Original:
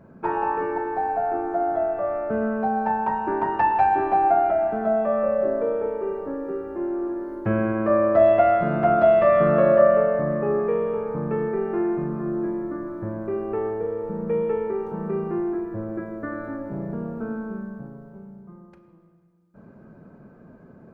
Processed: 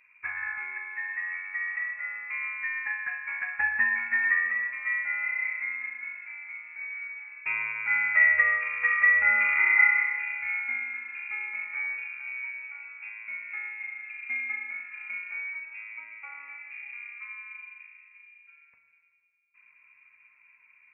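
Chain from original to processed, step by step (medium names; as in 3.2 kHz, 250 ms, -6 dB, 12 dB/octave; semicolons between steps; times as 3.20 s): frequency inversion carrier 2.6 kHz; upward expansion 1.5:1, over -28 dBFS; trim -4 dB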